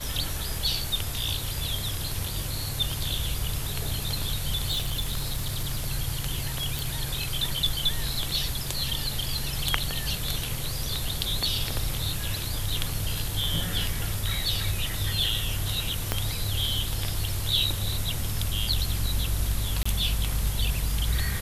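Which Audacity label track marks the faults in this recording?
4.690000	5.890000	clipping −23 dBFS
6.790000	6.790000	click
11.080000	11.080000	drop-out 2.3 ms
16.120000	16.120000	click −8 dBFS
19.830000	19.860000	drop-out 25 ms

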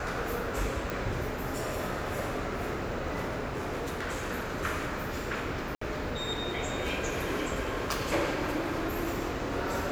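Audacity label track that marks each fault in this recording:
0.900000	0.900000	click
3.460000	4.310000	clipping −30 dBFS
5.750000	5.810000	drop-out 64 ms

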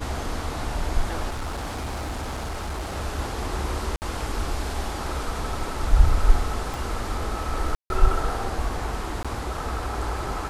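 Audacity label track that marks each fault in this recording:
1.290000	2.960000	clipping −26.5 dBFS
3.960000	4.020000	drop-out 59 ms
6.740000	6.740000	click
7.750000	7.900000	drop-out 151 ms
9.230000	9.250000	drop-out 16 ms

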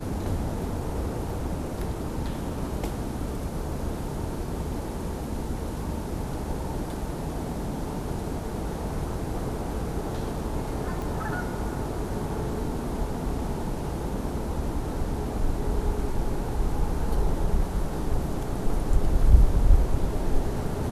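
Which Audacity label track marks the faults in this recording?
11.020000	11.020000	click

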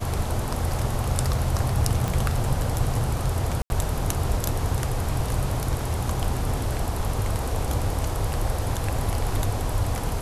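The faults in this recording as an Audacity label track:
2.080000	2.080000	click
3.620000	3.700000	drop-out 81 ms

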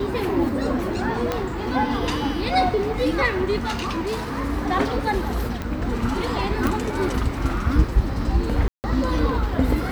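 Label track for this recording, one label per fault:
1.320000	1.320000	click −9 dBFS
3.630000	4.420000	clipping −21.5 dBFS
5.620000	5.620000	click −15 dBFS
6.670000	6.670000	click
8.680000	8.840000	drop-out 159 ms

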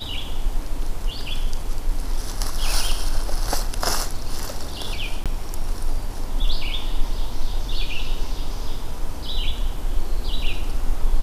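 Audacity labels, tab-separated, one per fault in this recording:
5.240000	5.260000	drop-out 17 ms

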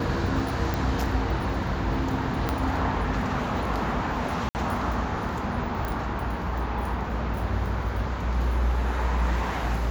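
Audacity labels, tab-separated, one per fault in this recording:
0.740000	0.740000	click
2.490000	2.490000	click −11 dBFS
4.490000	4.550000	drop-out 59 ms
5.850000	5.850000	click −18 dBFS

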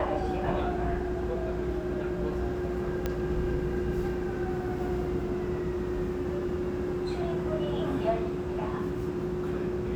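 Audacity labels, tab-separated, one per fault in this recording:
3.060000	3.060000	click −16 dBFS

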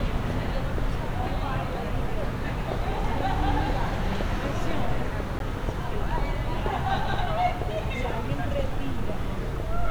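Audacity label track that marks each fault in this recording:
5.390000	5.400000	drop-out 12 ms

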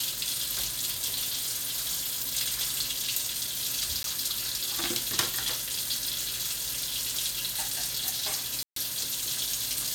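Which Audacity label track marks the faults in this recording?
1.130000	2.210000	clipping −27 dBFS
4.030000	4.040000	drop-out 12 ms
8.630000	8.760000	drop-out 133 ms

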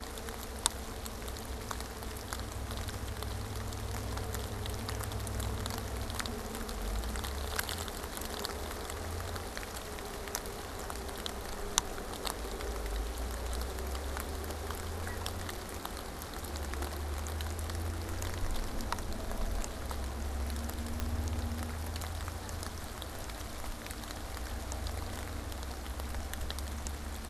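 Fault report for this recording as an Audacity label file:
21.000000	21.000000	click −19 dBFS

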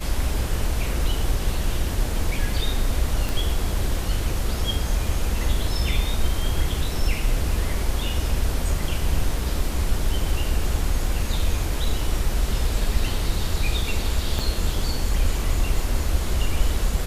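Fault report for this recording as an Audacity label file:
3.290000	3.290000	click
14.390000	14.390000	drop-out 4.1 ms

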